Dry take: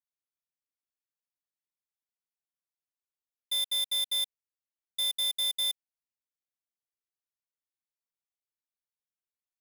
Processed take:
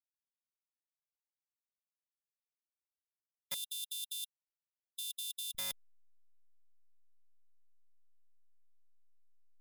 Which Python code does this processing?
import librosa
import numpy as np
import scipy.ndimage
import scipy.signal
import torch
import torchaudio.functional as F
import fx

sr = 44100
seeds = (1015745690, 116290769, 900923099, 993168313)

y = fx.delta_hold(x, sr, step_db=-52.0)
y = fx.cheby_ripple_highpass(y, sr, hz=2700.0, ripple_db=9, at=(3.54, 5.55))
y = fx.spectral_comp(y, sr, ratio=2.0)
y = F.gain(torch.from_numpy(y), 6.5).numpy()